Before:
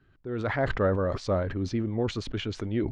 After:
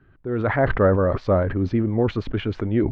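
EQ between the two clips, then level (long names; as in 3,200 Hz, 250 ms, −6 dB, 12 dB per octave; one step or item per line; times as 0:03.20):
low-pass filter 2,100 Hz 12 dB per octave
+7.5 dB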